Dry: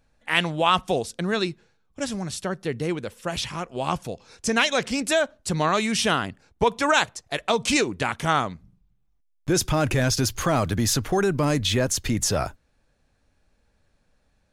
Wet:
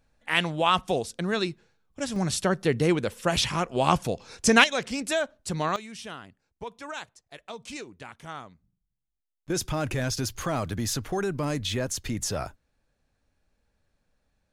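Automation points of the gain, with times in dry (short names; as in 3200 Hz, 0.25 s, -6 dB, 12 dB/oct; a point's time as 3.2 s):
-2.5 dB
from 2.16 s +4 dB
from 4.64 s -5 dB
from 5.76 s -17.5 dB
from 9.5 s -6.5 dB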